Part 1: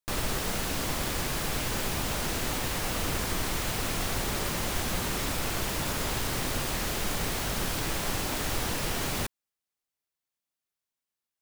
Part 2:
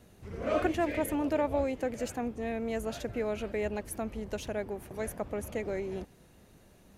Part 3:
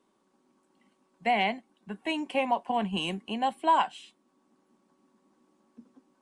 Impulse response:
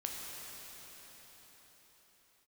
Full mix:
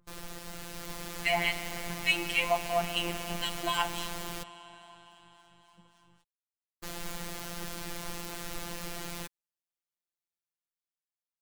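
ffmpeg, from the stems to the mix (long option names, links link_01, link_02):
-filter_complex "[0:a]volume=-10dB,asplit=3[link_01][link_02][link_03];[link_01]atrim=end=4.43,asetpts=PTS-STARTPTS,afade=type=out:start_time=4.426:duration=0.004:curve=hsin[link_04];[link_02]atrim=start=4.43:end=6.83,asetpts=PTS-STARTPTS,volume=0[link_05];[link_03]atrim=start=6.83,asetpts=PTS-STARTPTS,afade=type=in:duration=0.004:curve=hsin[link_06];[link_04][link_05][link_06]concat=n=3:v=0:a=1[link_07];[2:a]tiltshelf=frequency=970:gain=-8,aeval=exprs='val(0)+0.000708*(sin(2*PI*50*n/s)+sin(2*PI*2*50*n/s)/2+sin(2*PI*3*50*n/s)/3+sin(2*PI*4*50*n/s)/4+sin(2*PI*5*50*n/s)/5)':channel_layout=same,acrossover=split=1500[link_08][link_09];[link_08]aeval=exprs='val(0)*(1-1/2+1/2*cos(2*PI*3.6*n/s))':channel_layout=same[link_10];[link_09]aeval=exprs='val(0)*(1-1/2-1/2*cos(2*PI*3.6*n/s))':channel_layout=same[link_11];[link_10][link_11]amix=inputs=2:normalize=0,volume=-0.5dB,asplit=2[link_12][link_13];[link_13]volume=-7dB[link_14];[3:a]atrim=start_sample=2205[link_15];[link_14][link_15]afir=irnorm=-1:irlink=0[link_16];[link_07][link_12][link_16]amix=inputs=3:normalize=0,afftfilt=real='hypot(re,im)*cos(PI*b)':imag='0':win_size=1024:overlap=0.75,dynaudnorm=framelen=100:gausssize=17:maxgain=4.5dB"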